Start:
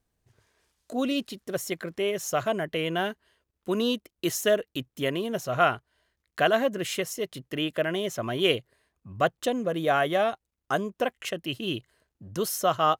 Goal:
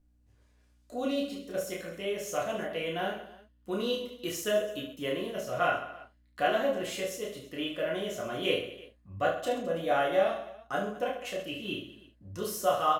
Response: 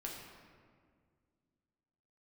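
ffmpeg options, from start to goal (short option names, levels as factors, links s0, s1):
-filter_complex "[0:a]aeval=exprs='val(0)+0.00112*(sin(2*PI*60*n/s)+sin(2*PI*2*60*n/s)/2+sin(2*PI*3*60*n/s)/3+sin(2*PI*4*60*n/s)/4+sin(2*PI*5*60*n/s)/5)':c=same,aecho=1:1:30|72|130.8|213.1|328.4:0.631|0.398|0.251|0.158|0.1[s0];[1:a]atrim=start_sample=2205,atrim=end_sample=3528,asetrate=74970,aresample=44100[s1];[s0][s1]afir=irnorm=-1:irlink=0"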